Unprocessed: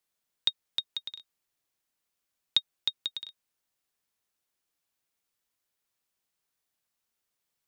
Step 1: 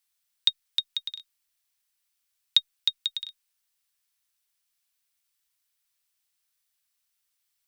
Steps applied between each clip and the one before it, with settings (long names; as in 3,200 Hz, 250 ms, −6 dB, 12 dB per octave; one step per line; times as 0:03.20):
guitar amp tone stack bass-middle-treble 10-0-10
notch filter 6,800 Hz, Q 18
level +6.5 dB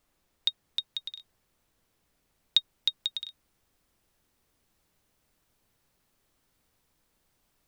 speech leveller 2 s
background noise pink −70 dBFS
level −5 dB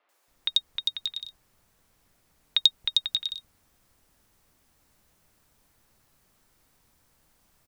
three-band delay without the direct sound mids, highs, lows 90/280 ms, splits 400/3,200 Hz
level +7.5 dB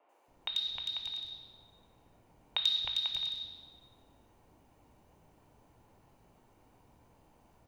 convolution reverb RT60 1.1 s, pre-delay 3 ms, DRR 9.5 dB
level −8 dB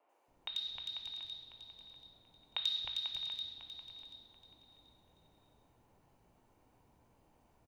repeating echo 734 ms, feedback 22%, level −11.5 dB
level −5.5 dB